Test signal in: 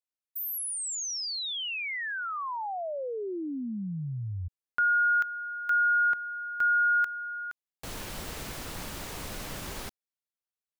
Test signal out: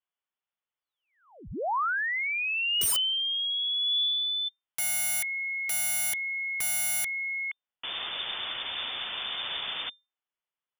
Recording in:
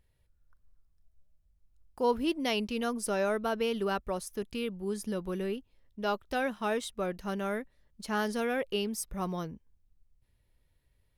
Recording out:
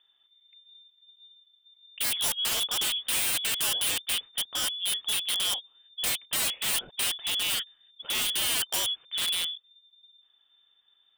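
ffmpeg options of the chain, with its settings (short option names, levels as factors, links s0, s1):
-af "equalizer=f=160:t=o:w=0.67:g=5,equalizer=f=630:t=o:w=0.67:g=6,equalizer=f=2500:t=o:w=0.67:g=4,lowpass=f=3100:t=q:w=0.5098,lowpass=f=3100:t=q:w=0.6013,lowpass=f=3100:t=q:w=0.9,lowpass=f=3100:t=q:w=2.563,afreqshift=-3600,aeval=exprs='(mod(18.8*val(0)+1,2)-1)/18.8':c=same,volume=1.41"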